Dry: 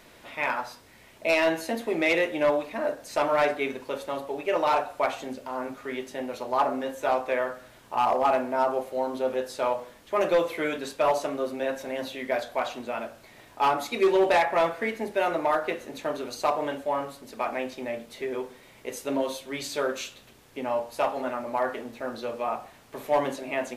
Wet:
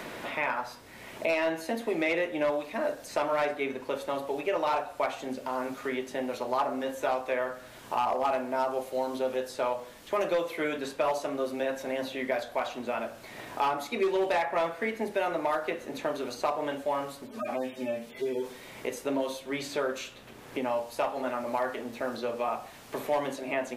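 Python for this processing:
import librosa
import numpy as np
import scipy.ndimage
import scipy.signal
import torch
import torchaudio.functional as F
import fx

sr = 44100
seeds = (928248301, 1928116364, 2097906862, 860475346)

y = fx.hpss_only(x, sr, part='harmonic', at=(17.25, 18.44), fade=0.02)
y = fx.band_squash(y, sr, depth_pct=70)
y = y * librosa.db_to_amplitude(-3.5)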